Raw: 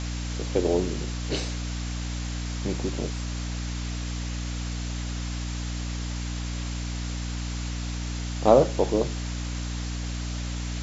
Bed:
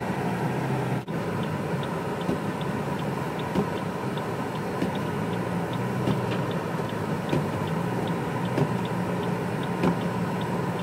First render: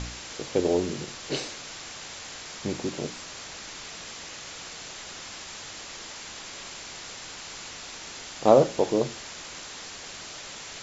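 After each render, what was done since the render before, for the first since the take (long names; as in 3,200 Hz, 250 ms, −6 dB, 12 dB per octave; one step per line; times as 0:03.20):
hum removal 60 Hz, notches 5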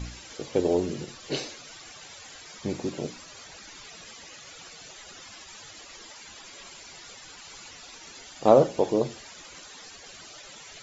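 broadband denoise 14 dB, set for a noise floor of −41 dBFS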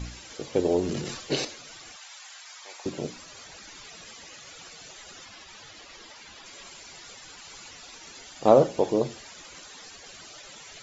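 0:00.83–0:01.45: transient designer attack +4 dB, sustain +10 dB
0:01.96–0:02.86: high-pass filter 770 Hz 24 dB per octave
0:05.25–0:06.46: low-pass filter 5,700 Hz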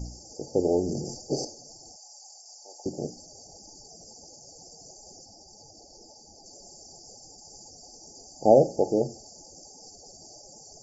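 brick-wall band-stop 880–4,500 Hz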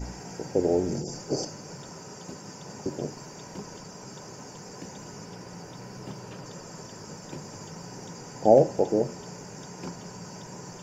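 mix in bed −15 dB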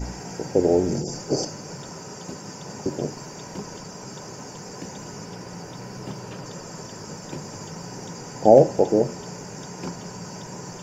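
level +5 dB
brickwall limiter −1 dBFS, peak gain reduction 1.5 dB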